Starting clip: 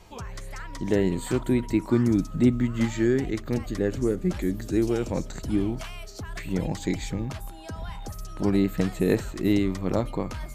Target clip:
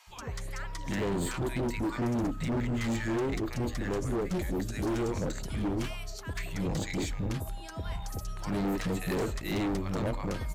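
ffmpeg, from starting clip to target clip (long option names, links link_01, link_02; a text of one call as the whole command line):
ffmpeg -i in.wav -filter_complex "[0:a]acrossover=split=250|840[link_01][link_02][link_03];[link_01]adelay=70[link_04];[link_02]adelay=100[link_05];[link_04][link_05][link_03]amix=inputs=3:normalize=0,asoftclip=type=hard:threshold=-27.5dB" out.wav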